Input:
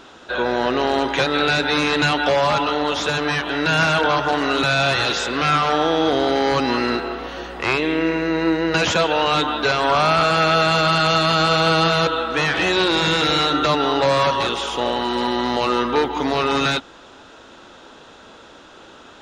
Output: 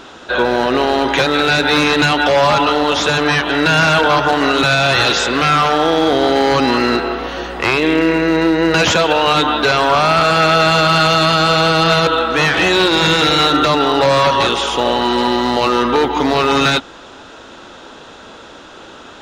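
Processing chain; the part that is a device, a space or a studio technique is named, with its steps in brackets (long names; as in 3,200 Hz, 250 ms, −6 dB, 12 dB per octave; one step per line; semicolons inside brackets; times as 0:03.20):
limiter into clipper (brickwall limiter −10.5 dBFS, peak gain reduction 4 dB; hard clipping −13 dBFS, distortion −24 dB)
level +7 dB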